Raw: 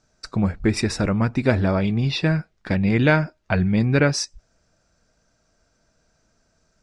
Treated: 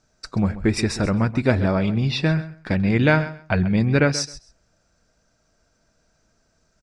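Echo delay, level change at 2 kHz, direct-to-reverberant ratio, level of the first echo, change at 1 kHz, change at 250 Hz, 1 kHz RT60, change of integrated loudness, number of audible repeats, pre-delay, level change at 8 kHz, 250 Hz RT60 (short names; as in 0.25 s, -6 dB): 0.132 s, 0.0 dB, none, -15.0 dB, 0.0 dB, 0.0 dB, none, 0.0 dB, 2, none, 0.0 dB, none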